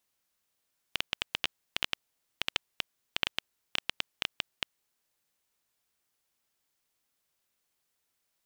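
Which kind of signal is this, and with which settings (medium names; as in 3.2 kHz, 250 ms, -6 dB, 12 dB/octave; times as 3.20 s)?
random clicks 7.4 per s -9.5 dBFS 3.90 s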